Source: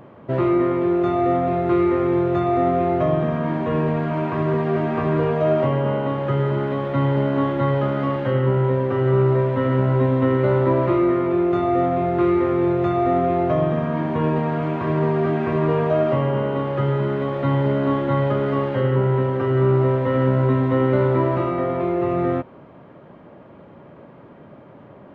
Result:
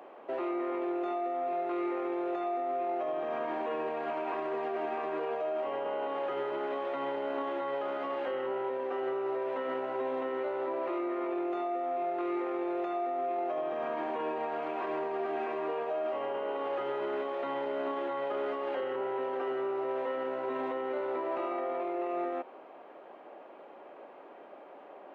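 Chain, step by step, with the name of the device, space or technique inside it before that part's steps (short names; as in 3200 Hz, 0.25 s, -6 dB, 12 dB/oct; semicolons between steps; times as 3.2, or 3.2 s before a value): laptop speaker (HPF 350 Hz 24 dB/oct; bell 760 Hz +9 dB 0.23 oct; bell 2600 Hz +5 dB 0.26 oct; limiter -22 dBFS, peak gain reduction 13.5 dB); gain -4.5 dB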